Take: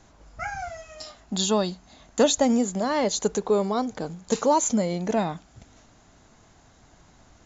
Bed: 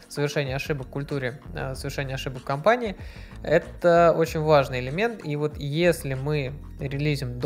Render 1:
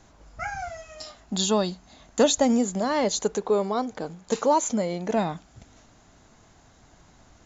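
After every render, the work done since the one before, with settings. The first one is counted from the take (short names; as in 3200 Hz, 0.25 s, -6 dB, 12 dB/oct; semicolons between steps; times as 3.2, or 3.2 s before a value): 3.23–5.14 tone controls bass -5 dB, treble -4 dB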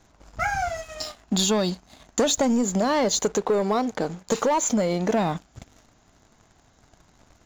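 sample leveller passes 2; compressor, threshold -19 dBFS, peak gain reduction 7 dB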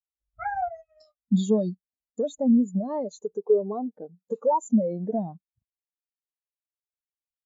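vocal rider within 4 dB 2 s; spectral expander 2.5:1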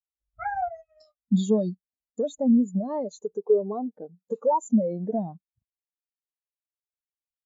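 nothing audible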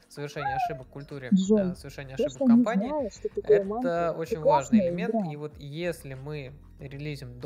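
add bed -10.5 dB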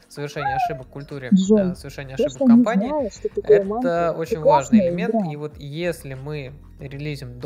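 gain +6.5 dB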